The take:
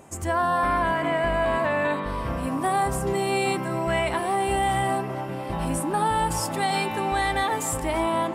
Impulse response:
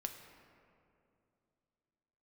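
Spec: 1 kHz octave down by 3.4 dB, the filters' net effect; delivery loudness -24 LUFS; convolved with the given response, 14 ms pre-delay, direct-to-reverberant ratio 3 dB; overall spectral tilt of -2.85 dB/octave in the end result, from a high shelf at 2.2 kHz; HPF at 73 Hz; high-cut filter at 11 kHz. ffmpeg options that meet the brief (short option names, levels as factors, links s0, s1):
-filter_complex "[0:a]highpass=73,lowpass=11000,equalizer=f=1000:t=o:g=-6,highshelf=f=2200:g=8.5,asplit=2[s0][s1];[1:a]atrim=start_sample=2205,adelay=14[s2];[s1][s2]afir=irnorm=-1:irlink=0,volume=0.841[s3];[s0][s3]amix=inputs=2:normalize=0,volume=0.891"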